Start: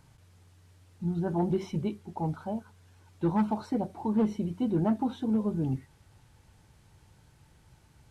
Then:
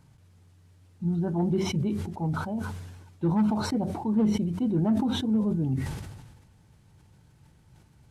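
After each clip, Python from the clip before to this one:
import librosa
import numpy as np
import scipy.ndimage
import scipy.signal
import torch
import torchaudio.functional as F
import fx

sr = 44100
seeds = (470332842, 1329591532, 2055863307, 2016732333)

y = fx.peak_eq(x, sr, hz=160.0, db=6.5, octaves=2.3)
y = fx.sustainer(y, sr, db_per_s=43.0)
y = y * 10.0 ** (-3.5 / 20.0)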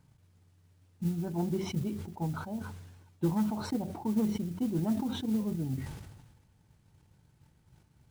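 y = fx.transient(x, sr, attack_db=6, sustain_db=-3)
y = fx.mod_noise(y, sr, seeds[0], snr_db=24)
y = y * 10.0 ** (-7.0 / 20.0)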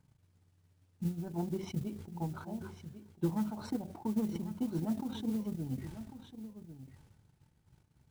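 y = fx.transient(x, sr, attack_db=3, sustain_db=-6)
y = y + 10.0 ** (-12.0 / 20.0) * np.pad(y, (int(1097 * sr / 1000.0), 0))[:len(y)]
y = y * 10.0 ** (-5.0 / 20.0)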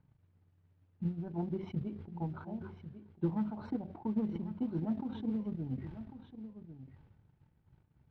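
y = fx.air_absorb(x, sr, metres=390.0)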